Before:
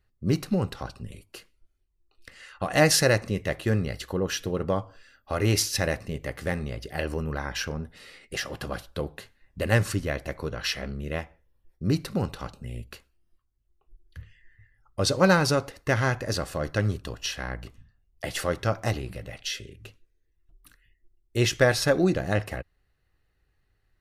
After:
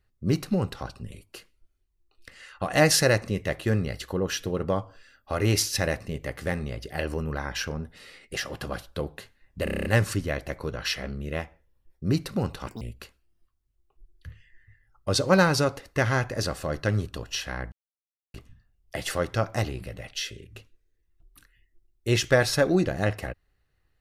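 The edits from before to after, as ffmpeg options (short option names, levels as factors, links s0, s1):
-filter_complex "[0:a]asplit=11[s0][s1][s2][s3][s4][s5][s6][s7][s8][s9][s10];[s0]atrim=end=9.672[s11];[s1]atrim=start=9.638:end=9.672[s12];[s2]atrim=start=9.638:end=9.672[s13];[s3]atrim=start=9.638:end=9.672[s14];[s4]atrim=start=9.638:end=9.672[s15];[s5]atrim=start=9.638:end=9.672[s16];[s6]atrim=start=9.638:end=9.672[s17];[s7]atrim=start=9.638:end=12.464[s18];[s8]atrim=start=12.46:end=12.72,asetpts=PTS-STARTPTS,asetrate=81585,aresample=44100[s19];[s9]atrim=start=12.716:end=17.63,asetpts=PTS-STARTPTS,afade=t=out:st=4.91:d=0.004:c=hsin,apad=pad_dur=0.62[s20];[s10]atrim=start=17.63,asetpts=PTS-STARTPTS,afade=t=in:d=0.004:c=hsin[s21];[s11][s12]acrossfade=d=0.004:c1=hsin:c2=hsin[s22];[s22][s13]acrossfade=d=0.004:c1=hsin:c2=hsin[s23];[s23][s14]acrossfade=d=0.004:c1=hsin:c2=hsin[s24];[s24][s15]acrossfade=d=0.004:c1=hsin:c2=hsin[s25];[s25][s16]acrossfade=d=0.004:c1=hsin:c2=hsin[s26];[s26][s17]acrossfade=d=0.004:c1=hsin:c2=hsin[s27];[s27][s18]acrossfade=d=0.004:c1=hsin:c2=hsin[s28];[s28][s19]acrossfade=d=0.004:c1=hsin:c2=hsin[s29];[s20][s21]concat=n=2:v=0:a=1[s30];[s29][s30]acrossfade=d=0.004:c1=hsin:c2=hsin"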